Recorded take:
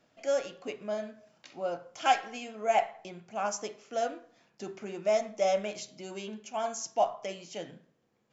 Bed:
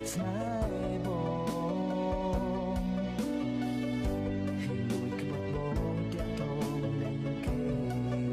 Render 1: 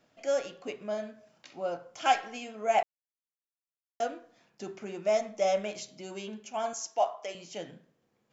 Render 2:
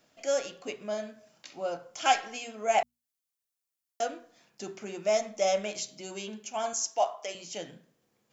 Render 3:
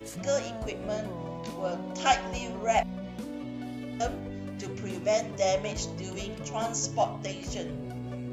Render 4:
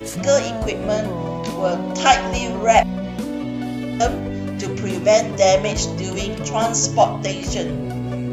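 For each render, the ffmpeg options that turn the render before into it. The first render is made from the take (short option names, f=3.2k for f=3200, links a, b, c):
-filter_complex "[0:a]asettb=1/sr,asplit=3[a][b][c];[a]atrim=end=6.734[d];[b]atrim=start=6.73:end=7.35,asetpts=PTS-STARTPTS,afade=t=in:d=0.004:c=qsin,afade=t=out:st=0.616:d=0.004:c=qsin,highpass=420[e];[c]atrim=start=7.346[f];[d][e]acrossfade=d=0.004:c1=hsin:c2=qsin[g];[g][f]acrossfade=d=0.004:c1=qsin:c2=hsin,asplit=3[h][i][j];[h]atrim=end=2.83,asetpts=PTS-STARTPTS,afade=t=out:st=2.826:d=0.004:c=hsin[k];[i]atrim=start=2.83:end=4,asetpts=PTS-STARTPTS,volume=0[l];[j]atrim=start=4,asetpts=PTS-STARTPTS,afade=t=in:d=0.004:c=hsin[m];[k][l][m]concat=n=3:v=0:a=1"
-af "highshelf=f=4.2k:g=10,bandreject=f=60:t=h:w=6,bandreject=f=120:t=h:w=6,bandreject=f=180:t=h:w=6,bandreject=f=240:t=h:w=6"
-filter_complex "[1:a]volume=-5dB[a];[0:a][a]amix=inputs=2:normalize=0"
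-af "volume=12dB,alimiter=limit=-2dB:level=0:latency=1"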